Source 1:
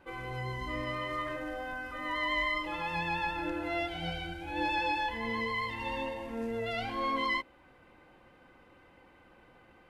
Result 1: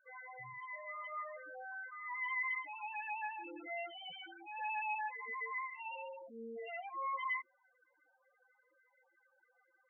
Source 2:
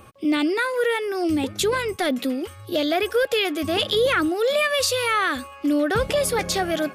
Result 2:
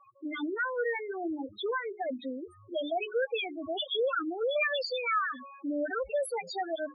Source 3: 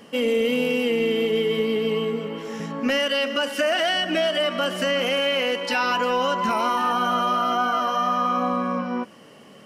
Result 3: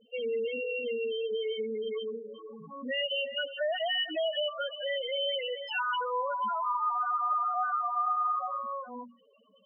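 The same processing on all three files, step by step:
low-shelf EQ 420 Hz −12 dB
mains-hum notches 60/120/180/240/300/360/420 Hz
spectral peaks only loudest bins 4
level −3.5 dB

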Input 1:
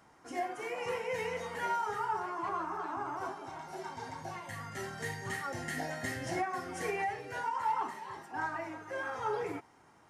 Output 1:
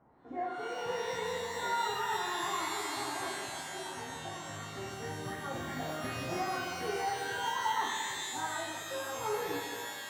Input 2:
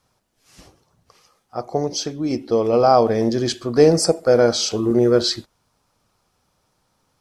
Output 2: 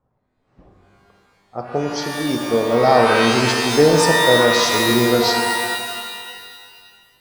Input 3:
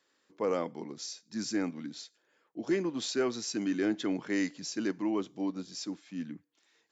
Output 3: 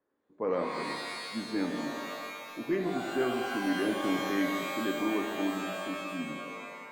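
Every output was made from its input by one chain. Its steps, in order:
low-pass that shuts in the quiet parts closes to 840 Hz, open at −16 dBFS
reverb with rising layers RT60 1.9 s, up +12 semitones, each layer −2 dB, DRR 3 dB
level −1 dB

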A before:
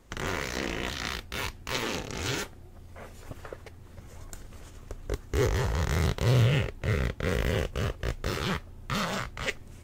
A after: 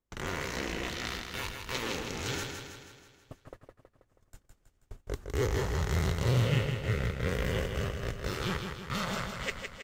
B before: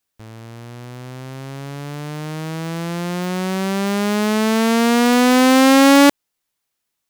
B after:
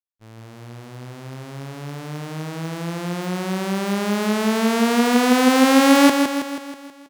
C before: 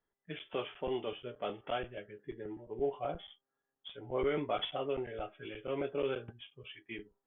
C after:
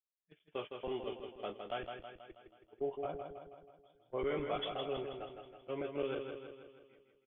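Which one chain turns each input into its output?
noise gate −38 dBFS, range −25 dB
repeating echo 161 ms, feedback 55%, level −6 dB
level −4 dB

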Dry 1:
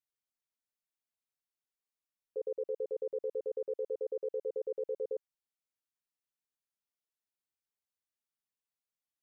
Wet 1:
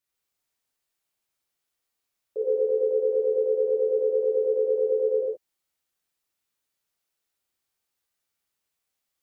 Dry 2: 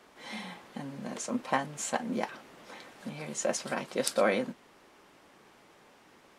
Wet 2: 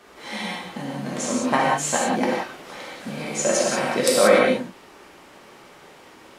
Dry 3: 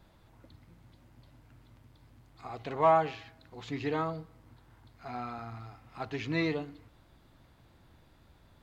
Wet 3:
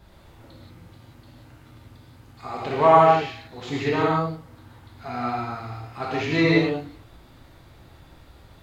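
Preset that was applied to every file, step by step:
reverb whose tail is shaped and stops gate 210 ms flat, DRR −4.5 dB
level +6 dB

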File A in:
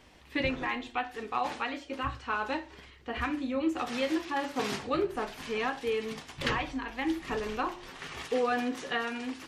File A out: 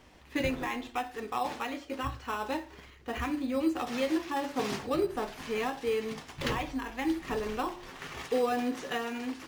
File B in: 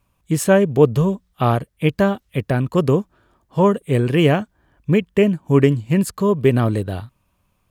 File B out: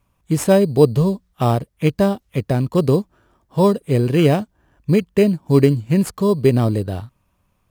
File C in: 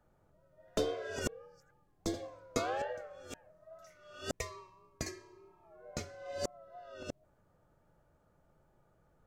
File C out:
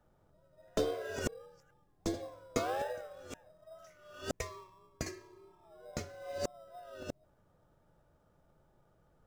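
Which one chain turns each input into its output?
dynamic equaliser 1,500 Hz, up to −7 dB, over −40 dBFS, Q 1.8
in parallel at −8 dB: decimation without filtering 10×
on the sum: level −2 dB

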